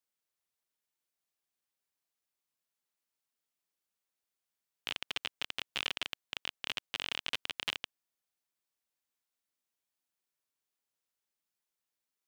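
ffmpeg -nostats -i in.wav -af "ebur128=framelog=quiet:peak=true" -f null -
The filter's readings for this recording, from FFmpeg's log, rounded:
Integrated loudness:
  I:         -37.8 LUFS
  Threshold: -47.9 LUFS
Loudness range:
  LRA:         9.4 LU
  Threshold: -60.3 LUFS
  LRA low:   -47.0 LUFS
  LRA high:  -37.6 LUFS
True peak:
  Peak:      -16.0 dBFS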